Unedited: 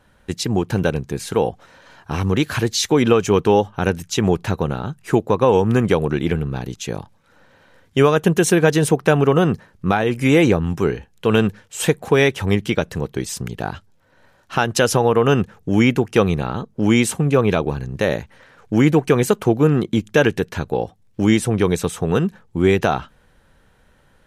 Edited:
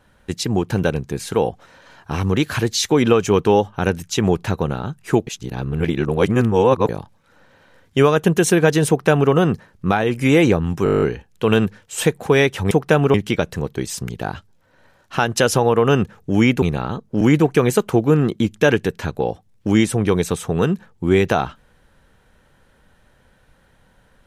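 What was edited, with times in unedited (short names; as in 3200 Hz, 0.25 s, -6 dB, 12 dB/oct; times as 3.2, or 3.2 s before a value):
5.27–6.89 reverse
8.88–9.31 copy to 12.53
10.84 stutter 0.02 s, 10 plays
16.01–16.27 cut
16.86–18.74 cut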